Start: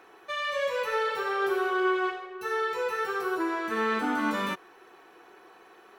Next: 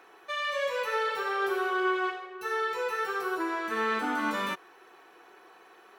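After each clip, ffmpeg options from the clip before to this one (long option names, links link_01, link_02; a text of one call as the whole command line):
ffmpeg -i in.wav -af "lowshelf=frequency=320:gain=-7" out.wav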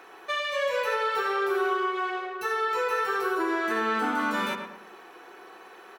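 ffmpeg -i in.wav -filter_complex "[0:a]acompressor=threshold=-31dB:ratio=6,asplit=2[link_01][link_02];[link_02]adelay=109,lowpass=frequency=1900:poles=1,volume=-5dB,asplit=2[link_03][link_04];[link_04]adelay=109,lowpass=frequency=1900:poles=1,volume=0.42,asplit=2[link_05][link_06];[link_06]adelay=109,lowpass=frequency=1900:poles=1,volume=0.42,asplit=2[link_07][link_08];[link_08]adelay=109,lowpass=frequency=1900:poles=1,volume=0.42,asplit=2[link_09][link_10];[link_10]adelay=109,lowpass=frequency=1900:poles=1,volume=0.42[link_11];[link_03][link_05][link_07][link_09][link_11]amix=inputs=5:normalize=0[link_12];[link_01][link_12]amix=inputs=2:normalize=0,volume=6dB" out.wav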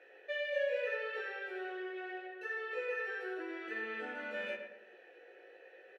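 ffmpeg -i in.wav -filter_complex "[0:a]asplit=3[link_01][link_02][link_03];[link_01]bandpass=frequency=530:width_type=q:width=8,volume=0dB[link_04];[link_02]bandpass=frequency=1840:width_type=q:width=8,volume=-6dB[link_05];[link_03]bandpass=frequency=2480:width_type=q:width=8,volume=-9dB[link_06];[link_04][link_05][link_06]amix=inputs=3:normalize=0,asplit=2[link_07][link_08];[link_08]adelay=19,volume=-2dB[link_09];[link_07][link_09]amix=inputs=2:normalize=0" out.wav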